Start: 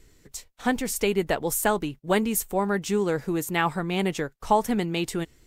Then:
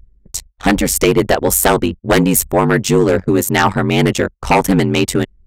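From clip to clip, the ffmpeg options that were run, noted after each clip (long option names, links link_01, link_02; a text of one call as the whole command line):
ffmpeg -i in.wav -af "aeval=exprs='val(0)*sin(2*PI*47*n/s)':channel_layout=same,anlmdn=0.1,aeval=exprs='0.376*sin(PI/2*2.82*val(0)/0.376)':channel_layout=same,volume=4dB" out.wav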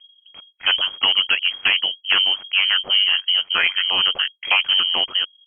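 ffmpeg -i in.wav -af "lowpass=frequency=2800:width_type=q:width=0.5098,lowpass=frequency=2800:width_type=q:width=0.6013,lowpass=frequency=2800:width_type=q:width=0.9,lowpass=frequency=2800:width_type=q:width=2.563,afreqshift=-3300,volume=-5.5dB" out.wav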